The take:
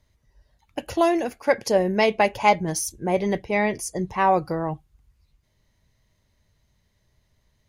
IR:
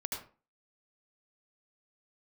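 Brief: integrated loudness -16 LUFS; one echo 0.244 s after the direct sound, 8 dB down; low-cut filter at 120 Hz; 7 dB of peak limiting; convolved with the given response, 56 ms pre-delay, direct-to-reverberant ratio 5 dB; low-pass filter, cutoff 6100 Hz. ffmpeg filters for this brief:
-filter_complex "[0:a]highpass=120,lowpass=6.1k,alimiter=limit=-12dB:level=0:latency=1,aecho=1:1:244:0.398,asplit=2[a][b];[1:a]atrim=start_sample=2205,adelay=56[c];[b][c]afir=irnorm=-1:irlink=0,volume=-7dB[d];[a][d]amix=inputs=2:normalize=0,volume=7.5dB"

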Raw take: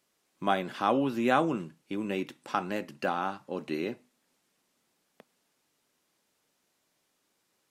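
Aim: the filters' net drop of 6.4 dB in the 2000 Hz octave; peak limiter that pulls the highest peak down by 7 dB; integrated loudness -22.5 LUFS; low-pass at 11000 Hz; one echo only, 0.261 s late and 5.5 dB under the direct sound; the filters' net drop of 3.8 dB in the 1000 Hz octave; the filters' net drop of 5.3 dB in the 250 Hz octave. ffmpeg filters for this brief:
-af "lowpass=11k,equalizer=f=250:t=o:g=-6.5,equalizer=f=1k:t=o:g=-3,equalizer=f=2k:t=o:g=-8,alimiter=limit=-21.5dB:level=0:latency=1,aecho=1:1:261:0.531,volume=13.5dB"

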